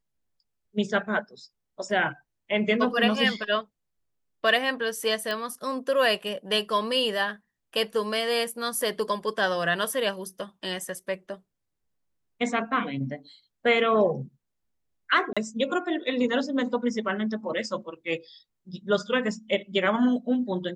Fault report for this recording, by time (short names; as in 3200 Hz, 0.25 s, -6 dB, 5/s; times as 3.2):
5.31 pop -17 dBFS
15.33–15.37 gap 36 ms